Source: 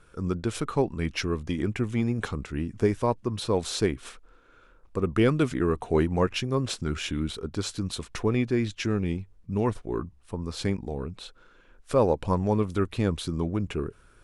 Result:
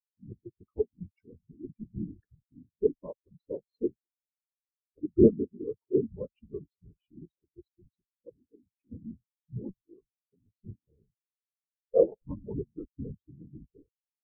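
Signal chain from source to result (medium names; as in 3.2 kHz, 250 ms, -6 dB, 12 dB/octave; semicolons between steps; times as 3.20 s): 8.05–8.92 s: level held to a coarse grid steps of 11 dB; whisper effect; vibrato 0.61 Hz 38 cents; delay 208 ms -20.5 dB; spectral contrast expander 4:1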